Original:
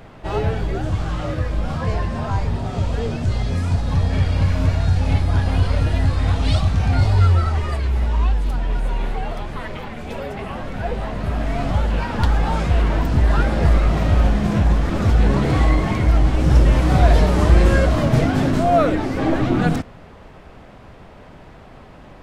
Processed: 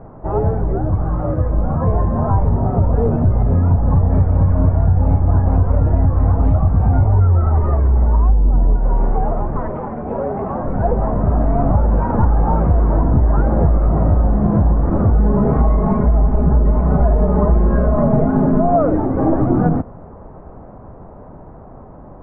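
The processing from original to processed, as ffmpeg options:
ffmpeg -i in.wav -filter_complex "[0:a]asettb=1/sr,asplit=3[link_01][link_02][link_03];[link_01]atrim=end=8.294[link_04];[link_02]atrim=start=8.29:end=8.76,asetpts=PTS-STARTPTS,afade=type=in:duration=0.004:curve=qsin,afade=type=out:start_time=0.466:duration=0.004:curve=qsin,tiltshelf=frequency=920:gain=6[link_05];[link_03]atrim=start=8.756[link_06];[link_04][link_05]acrossfade=duration=0.004:curve1=hsin:curve2=qsin[link_07];[link_07][link_06]acrossfade=duration=0.004:curve1=qsin:curve2=hsin,asettb=1/sr,asplit=3[link_08][link_09][link_10];[link_08]atrim=end=9.704[link_11];[link_09]atrim=start=9.7:end=10.65,asetpts=PTS-STARTPTS,afade=type=in:duration=0.004:curve=qsin,afade=type=out:start_time=0.946:duration=0.004:curve=qsin,lowshelf=frequency=83:gain=-11.5[link_12];[link_10]atrim=start=10.646[link_13];[link_11][link_12]acrossfade=duration=0.004:curve1=hsin:curve2=qsin[link_14];[link_14][link_13]acrossfade=duration=0.004:curve1=qsin:curve2=hsin,asettb=1/sr,asplit=3[link_15][link_16][link_17];[link_15]atrim=end=15.154[link_18];[link_16]atrim=start=15.15:end=18.76,asetpts=PTS-STARTPTS,afade=type=in:duration=0.004:curve=qsin,afade=type=out:start_time=3.606:duration=0.004:curve=qsin,aecho=1:1:4.8:0.79,atrim=end_sample=159201[link_19];[link_17]atrim=start=18.756[link_20];[link_18][link_19]acrossfade=duration=0.004:curve1=hsin:curve2=qsin[link_21];[link_21][link_20]acrossfade=duration=0.004:curve1=qsin:curve2=hsin,dynaudnorm=framelen=500:gausssize=9:maxgain=11.5dB,lowpass=frequency=1100:width=0.5412,lowpass=frequency=1100:width=1.3066,acompressor=threshold=-14dB:ratio=6,volume=4.5dB" out.wav

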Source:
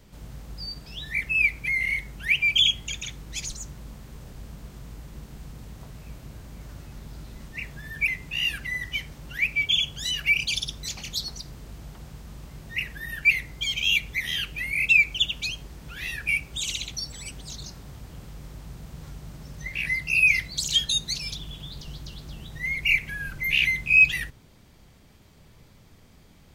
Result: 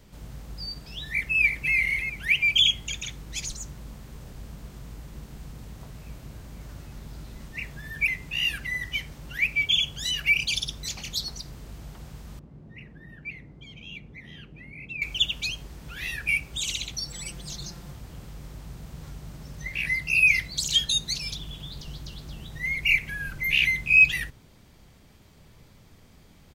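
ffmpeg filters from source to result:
ffmpeg -i in.wav -filter_complex "[0:a]asplit=2[link_01][link_02];[link_02]afade=type=in:start_time=1.1:duration=0.01,afade=type=out:start_time=1.75:duration=0.01,aecho=0:1:340|680|1020:0.530884|0.132721|0.0331803[link_03];[link_01][link_03]amix=inputs=2:normalize=0,asettb=1/sr,asplit=3[link_04][link_05][link_06];[link_04]atrim=end=12.394[link_07];[link_05]atrim=start=12.39:end=15.02,asetpts=PTS-STARTPTS,afade=type=in:duration=0.004:curve=qsin,afade=type=out:start_time=2.626:duration=0.004:curve=qsin,bandpass=frequency=230:width_type=q:width=0.82[link_08];[link_06]atrim=start=15.016[link_09];[link_07][link_08]acrossfade=duration=0.004:curve1=hsin:curve2=qsin[link_10];[link_10][link_09]acrossfade=duration=0.004:curve1=qsin:curve2=hsin,asettb=1/sr,asplit=3[link_11][link_12][link_13];[link_11]atrim=end=17.074[link_14];[link_12]atrim=start=17.07:end=17.93,asetpts=PTS-STARTPTS,afade=type=in:duration=0.004:curve=qsin,afade=type=out:start_time=0.856:duration=0.004:curve=qsin,aecho=1:1:5.8:0.65,atrim=end_sample=37926[link_15];[link_13]atrim=start=17.926[link_16];[link_14][link_15]acrossfade=duration=0.004:curve1=hsin:curve2=qsin[link_17];[link_17][link_16]acrossfade=duration=0.004:curve1=qsin:curve2=hsin" out.wav

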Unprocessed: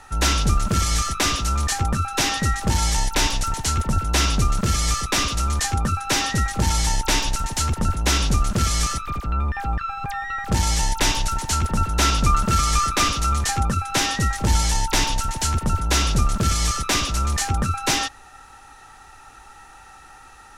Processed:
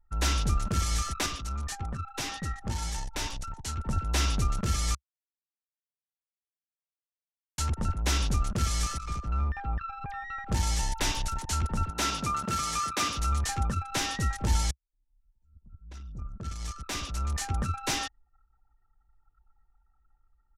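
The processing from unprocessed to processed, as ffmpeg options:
ffmpeg -i in.wav -filter_complex "[0:a]asettb=1/sr,asplit=3[link_01][link_02][link_03];[link_01]atrim=end=1.264[link_04];[link_02]atrim=start=1.26:end=3.84,asetpts=PTS-STARTPTS,afade=type=in:duration=0.004:curve=qsin,afade=type=out:start_time=2.576:duration=0.004:curve=qsin,flanger=delay=4.6:depth=5.5:regen=68:speed=1.8:shape=triangular[link_05];[link_03]atrim=start=3.836[link_06];[link_04][link_05]acrossfade=duration=0.004:curve1=hsin:curve2=qsin[link_07];[link_07][link_06]acrossfade=duration=0.004:curve1=qsin:curve2=hsin,asplit=2[link_08][link_09];[link_09]afade=type=in:start_time=8.68:duration=0.01,afade=type=out:start_time=9.24:duration=0.01,aecho=0:1:310|620:0.281838|0.0422757[link_10];[link_08][link_10]amix=inputs=2:normalize=0,asettb=1/sr,asplit=3[link_11][link_12][link_13];[link_11]atrim=end=11.904[link_14];[link_12]atrim=start=11.9:end=13.15,asetpts=PTS-STARTPTS,afade=type=in:duration=0.004:curve=qsin,afade=type=out:start_time=1.246:duration=0.004:curve=qsin,highpass=140[link_15];[link_13]atrim=start=13.146[link_16];[link_14][link_15]acrossfade=duration=0.004:curve1=hsin:curve2=qsin[link_17];[link_17][link_16]acrossfade=duration=0.004:curve1=qsin:curve2=hsin,asplit=4[link_18][link_19][link_20][link_21];[link_18]atrim=end=4.95,asetpts=PTS-STARTPTS,afade=type=out:start_time=4.946:duration=0.004:curve=hsin[link_22];[link_19]atrim=start=4.95:end=7.58,asetpts=PTS-STARTPTS,volume=0[link_23];[link_20]atrim=start=7.58:end=14.71,asetpts=PTS-STARTPTS,afade=type=in:duration=0.004:curve=hsin,afade=type=out:start_time=7.126:duration=0.004:curve=hsin[link_24];[link_21]atrim=start=14.71,asetpts=PTS-STARTPTS,afade=type=in:duration=2.92:curve=qua[link_25];[link_22][link_23][link_24][link_25]concat=n=4:v=0:a=1,anlmdn=39.8,equalizer=frequency=68:width_type=o:width=0.77:gain=4,volume=-9dB" out.wav

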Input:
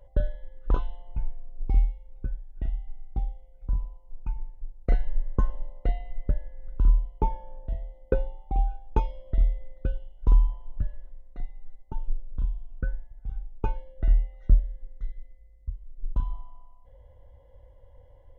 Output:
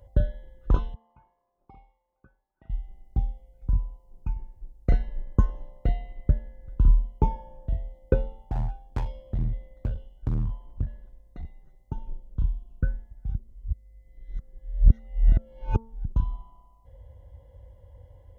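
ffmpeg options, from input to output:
ffmpeg -i in.wav -filter_complex "[0:a]asettb=1/sr,asplit=3[link_01][link_02][link_03];[link_01]atrim=end=0.944[link_04];[link_02]atrim=start=0.94:end=2.7,asetpts=PTS-STARTPTS,afade=type=in:duration=0.004:curve=qsin,afade=type=out:start_time=1.756:duration=0.004:curve=qsin,bandpass=frequency=1100:width_type=q:width=2.9[link_05];[link_03]atrim=start=2.696[link_06];[link_04][link_05]acrossfade=duration=0.004:curve1=hsin:curve2=qsin[link_07];[link_07][link_06]acrossfade=duration=0.004:curve1=qsin:curve2=hsin,asettb=1/sr,asplit=3[link_08][link_09][link_10];[link_08]atrim=end=8.374[link_11];[link_09]atrim=start=8.37:end=11.45,asetpts=PTS-STARTPTS,afade=type=in:duration=0.004:curve=qsin,afade=type=out:start_time=3.076:duration=0.004:curve=qsin,asoftclip=type=hard:threshold=-26.5dB[link_12];[link_10]atrim=start=11.446[link_13];[link_11][link_12]acrossfade=duration=0.004:curve1=hsin:curve2=qsin[link_14];[link_14][link_13]acrossfade=duration=0.004:curve1=qsin:curve2=hsin,asplit=3[link_15][link_16][link_17];[link_15]atrim=end=13.352[link_18];[link_16]atrim=start=13.348:end=16.052,asetpts=PTS-STARTPTS,areverse[link_19];[link_17]atrim=start=16.048[link_20];[link_18][link_19]acrossfade=duration=0.004:curve1=hsin:curve2=hsin[link_21];[link_21][link_20]acrossfade=duration=0.004:curve1=hsin:curve2=hsin,highpass=58,bass=frequency=250:gain=9,treble=frequency=4000:gain=6,bandreject=frequency=225:width_type=h:width=4,bandreject=frequency=450:width_type=h:width=4,bandreject=frequency=675:width_type=h:width=4,bandreject=frequency=900:width_type=h:width=4,bandreject=frequency=1125:width_type=h:width=4,bandreject=frequency=1350:width_type=h:width=4" out.wav

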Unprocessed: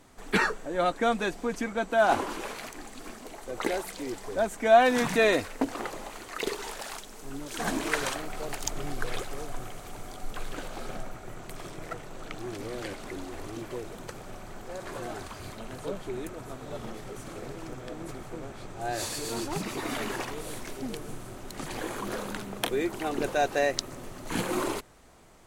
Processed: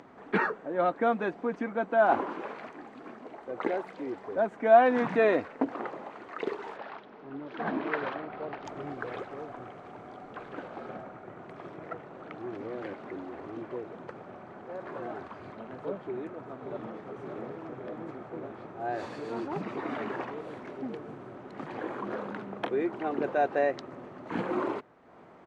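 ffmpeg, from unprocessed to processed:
ffmpeg -i in.wav -filter_complex "[0:a]asettb=1/sr,asplit=3[link_01][link_02][link_03];[link_01]atrim=end=6.774[link_04];[link_02]atrim=start=6.77:end=8.65,asetpts=PTS-STARTPTS,afade=type=in:duration=0.004:curve=qsin,afade=type=out:start_time=1.876:duration=0.004:curve=qsin,lowpass=frequency=4500:width=0.5412,lowpass=frequency=4500:width=1.3066[link_05];[link_03]atrim=start=8.646[link_06];[link_04][link_05]acrossfade=duration=0.004:curve1=hsin:curve2=qsin[link_07];[link_07][link_06]acrossfade=duration=0.004:curve1=qsin:curve2=hsin,asplit=2[link_08][link_09];[link_09]afade=type=in:start_time=16.05:duration=0.01,afade=type=out:start_time=17:duration=0.01,aecho=0:1:570|1140|1710|2280|2850|3420|3990|4560|5130|5700|6270|6840:0.446684|0.379681|0.322729|0.27432|0.233172|0.198196|0.168467|0.143197|0.121717|0.103459|0.0879406|0.0747495[link_10];[link_08][link_10]amix=inputs=2:normalize=0,lowpass=1600,acompressor=mode=upward:threshold=-43dB:ratio=2.5,highpass=170" out.wav

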